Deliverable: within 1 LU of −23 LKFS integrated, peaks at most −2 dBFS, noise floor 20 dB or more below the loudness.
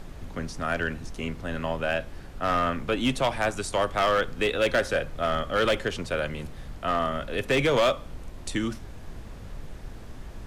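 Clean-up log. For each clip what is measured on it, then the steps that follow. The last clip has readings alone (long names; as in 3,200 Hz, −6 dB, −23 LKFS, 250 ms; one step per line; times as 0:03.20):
share of clipped samples 1.2%; peaks flattened at −17.5 dBFS; background noise floor −42 dBFS; target noise floor −47 dBFS; integrated loudness −27.0 LKFS; sample peak −17.5 dBFS; target loudness −23.0 LKFS
→ clipped peaks rebuilt −17.5 dBFS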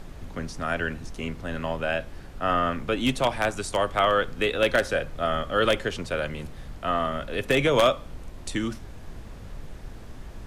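share of clipped samples 0.0%; background noise floor −42 dBFS; target noise floor −46 dBFS
→ noise reduction from a noise print 6 dB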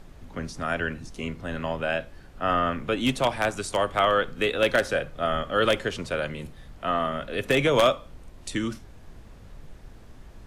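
background noise floor −47 dBFS; integrated loudness −26.0 LKFS; sample peak −8.5 dBFS; target loudness −23.0 LKFS
→ level +3 dB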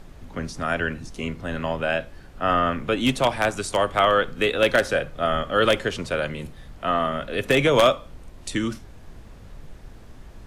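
integrated loudness −23.0 LKFS; sample peak −5.5 dBFS; background noise floor −45 dBFS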